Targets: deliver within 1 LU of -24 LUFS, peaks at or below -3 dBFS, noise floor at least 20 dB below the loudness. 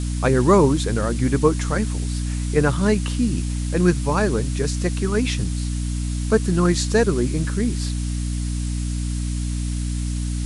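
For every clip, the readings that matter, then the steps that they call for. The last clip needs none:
hum 60 Hz; harmonics up to 300 Hz; hum level -21 dBFS; noise floor -25 dBFS; noise floor target -42 dBFS; loudness -21.5 LUFS; peak -2.5 dBFS; loudness target -24.0 LUFS
-> de-hum 60 Hz, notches 5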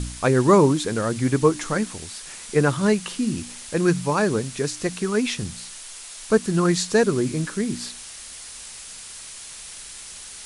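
hum none; noise floor -40 dBFS; noise floor target -42 dBFS
-> denoiser 6 dB, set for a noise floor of -40 dBFS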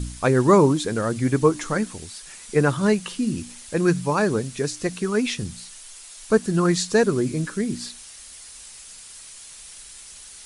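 noise floor -43 dBFS; loudness -22.0 LUFS; peak -4.5 dBFS; loudness target -24.0 LUFS
-> gain -2 dB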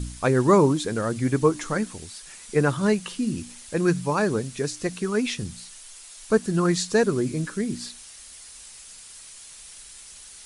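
loudness -24.0 LUFS; peak -6.5 dBFS; noise floor -45 dBFS

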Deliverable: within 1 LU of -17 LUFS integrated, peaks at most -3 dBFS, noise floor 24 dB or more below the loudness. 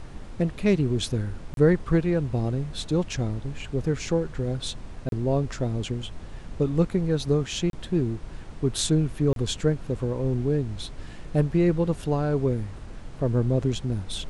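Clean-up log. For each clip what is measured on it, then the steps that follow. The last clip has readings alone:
dropouts 4; longest dropout 32 ms; noise floor -40 dBFS; noise floor target -50 dBFS; loudness -26.0 LUFS; peak -8.0 dBFS; loudness target -17.0 LUFS
-> interpolate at 1.54/5.09/7.7/9.33, 32 ms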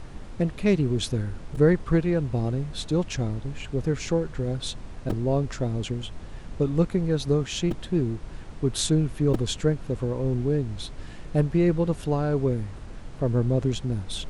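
dropouts 0; noise floor -40 dBFS; noise floor target -50 dBFS
-> noise print and reduce 10 dB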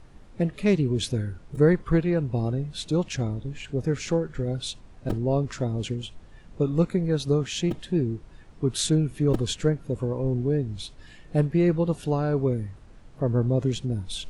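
noise floor -49 dBFS; noise floor target -50 dBFS
-> noise print and reduce 6 dB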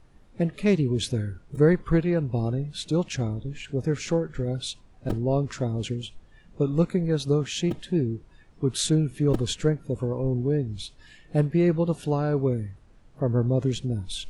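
noise floor -54 dBFS; loudness -26.0 LUFS; peak -8.0 dBFS; loudness target -17.0 LUFS
-> gain +9 dB; limiter -3 dBFS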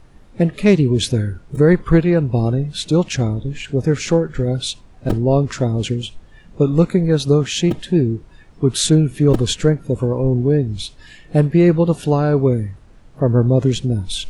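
loudness -17.5 LUFS; peak -3.0 dBFS; noise floor -45 dBFS

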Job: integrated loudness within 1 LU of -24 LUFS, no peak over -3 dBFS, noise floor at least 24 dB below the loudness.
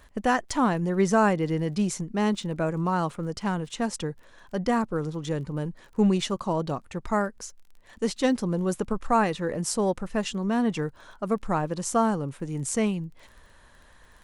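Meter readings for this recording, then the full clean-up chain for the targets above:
ticks 21/s; loudness -27.0 LUFS; peak -10.5 dBFS; loudness target -24.0 LUFS
-> de-click; gain +3 dB

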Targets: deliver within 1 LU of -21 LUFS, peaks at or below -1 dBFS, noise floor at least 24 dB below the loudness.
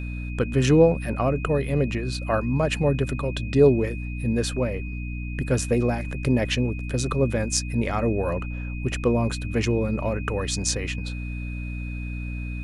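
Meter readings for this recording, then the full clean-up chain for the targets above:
hum 60 Hz; harmonics up to 300 Hz; hum level -28 dBFS; steady tone 2500 Hz; tone level -40 dBFS; loudness -24.5 LUFS; peak -5.0 dBFS; loudness target -21.0 LUFS
-> notches 60/120/180/240/300 Hz; notch 2500 Hz, Q 30; gain +3.5 dB

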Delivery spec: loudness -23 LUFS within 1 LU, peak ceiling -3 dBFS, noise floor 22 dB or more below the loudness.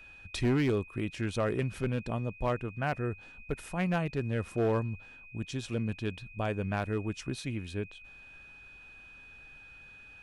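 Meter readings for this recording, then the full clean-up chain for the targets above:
clipped 0.9%; flat tops at -22.5 dBFS; steady tone 2500 Hz; tone level -50 dBFS; loudness -33.5 LUFS; peak -22.5 dBFS; loudness target -23.0 LUFS
-> clip repair -22.5 dBFS; notch 2500 Hz, Q 30; gain +10.5 dB

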